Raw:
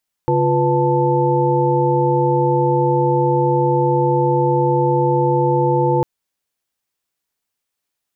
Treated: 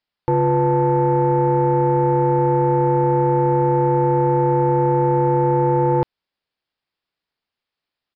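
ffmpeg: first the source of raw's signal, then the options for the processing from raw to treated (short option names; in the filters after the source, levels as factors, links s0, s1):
-f lavfi -i "aevalsrc='0.119*(sin(2*PI*138.59*t)+sin(2*PI*349.23*t)+sin(2*PI*493.88*t)+sin(2*PI*880*t))':d=5.75:s=44100"
-af "asoftclip=type=tanh:threshold=0.398,aresample=11025,aresample=44100"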